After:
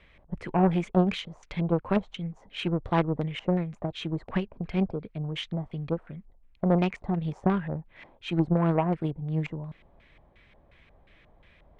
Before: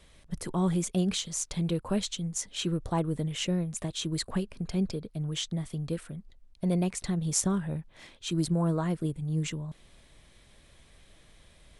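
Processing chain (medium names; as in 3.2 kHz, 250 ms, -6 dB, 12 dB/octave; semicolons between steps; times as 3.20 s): LFO low-pass square 2.8 Hz 820–2300 Hz; Chebyshev shaper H 3 -14 dB, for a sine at -15.5 dBFS; trim +7 dB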